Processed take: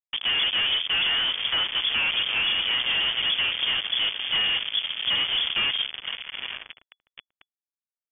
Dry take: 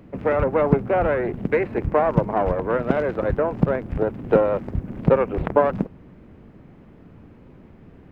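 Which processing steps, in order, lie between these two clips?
echo that smears into a reverb 921 ms, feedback 43%, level -15 dB; fuzz box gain 33 dB, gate -31 dBFS; frequency inversion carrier 3.4 kHz; trim -8.5 dB

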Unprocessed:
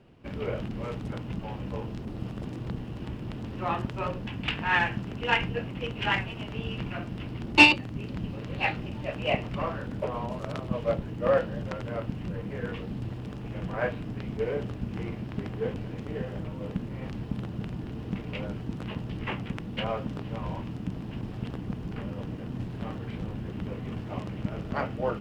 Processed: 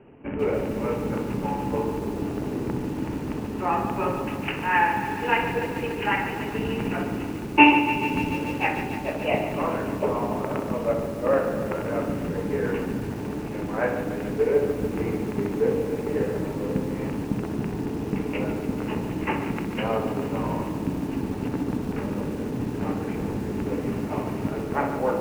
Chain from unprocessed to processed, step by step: steep low-pass 2.8 kHz 72 dB/octave; bass shelf 130 Hz -5 dB; hum notches 60/120/180/240/300 Hz; in parallel at +1.5 dB: gain riding within 5 dB 0.5 s; on the sum: small resonant body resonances 290/410/870 Hz, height 9 dB, ringing for 60 ms; on a send: tape echo 63 ms, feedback 70%, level -5 dB, low-pass 1.4 kHz; on the sum: bit-crushed delay 145 ms, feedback 80%, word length 6-bit, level -10 dB; trim -4.5 dB

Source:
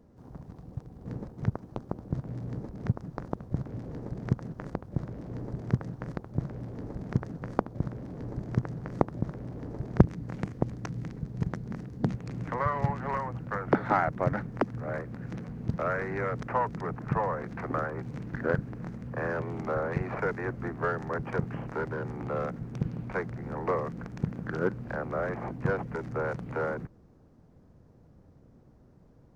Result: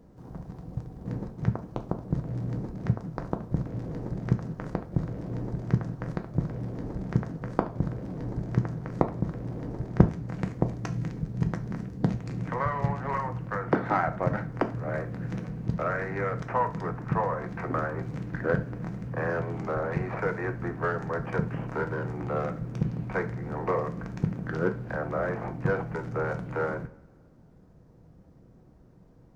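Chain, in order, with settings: in parallel at -1.5 dB: gain riding within 5 dB 0.5 s; on the sum: reverberation, pre-delay 3 ms, DRR 6 dB; trim -4.5 dB

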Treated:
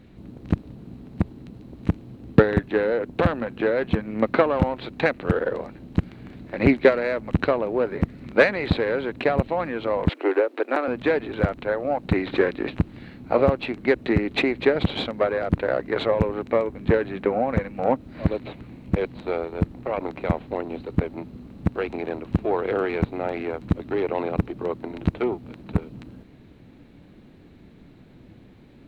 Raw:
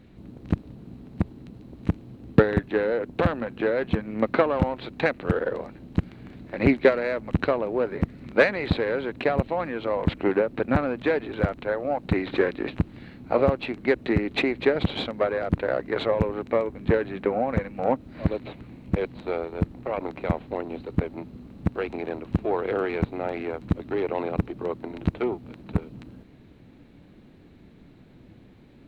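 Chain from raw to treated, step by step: 10.09–10.88 s: steep high-pass 300 Hz 48 dB/octave; trim +2 dB

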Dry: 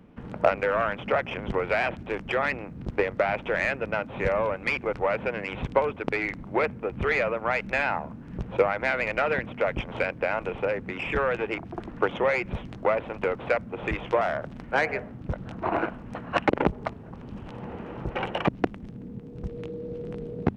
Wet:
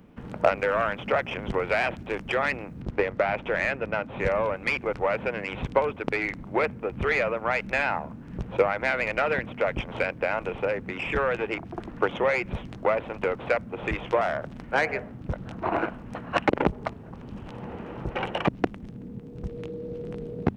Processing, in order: treble shelf 5.9 kHz +8.5 dB, from 2.82 s -2 dB, from 4.20 s +4.5 dB

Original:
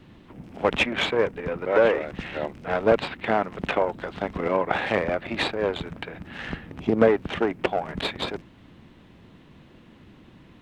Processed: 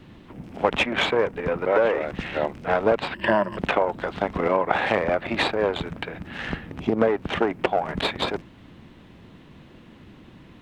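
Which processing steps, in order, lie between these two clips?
3.14–3.58 s: rippled EQ curve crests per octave 1.3, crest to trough 15 dB; compression 3:1, threshold -23 dBFS, peak gain reduction 8.5 dB; dynamic bell 880 Hz, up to +4 dB, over -36 dBFS, Q 0.8; trim +3 dB

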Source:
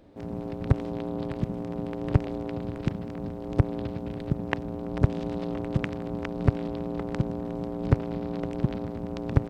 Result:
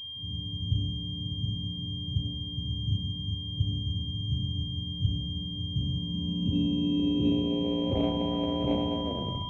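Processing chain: tape stop on the ending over 0.43 s; high-pass 55 Hz 24 dB/octave; transient shaper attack -6 dB, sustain +8 dB; whistle 990 Hz -32 dBFS; saturation -24 dBFS, distortion -11 dB; low-pass sweep 120 Hz -> 640 Hz, 5.70–8.10 s; on a send at -6 dB: reverberation RT60 1.0 s, pre-delay 3 ms; on the sum: class-D stage that switches slowly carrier 3.2 kHz; trim -1.5 dB

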